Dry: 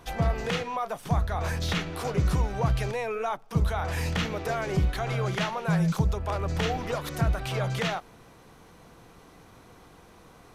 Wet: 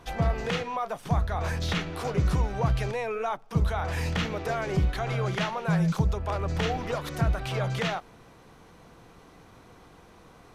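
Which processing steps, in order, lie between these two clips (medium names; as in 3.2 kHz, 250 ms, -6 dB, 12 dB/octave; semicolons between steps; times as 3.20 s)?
treble shelf 8.8 kHz -7 dB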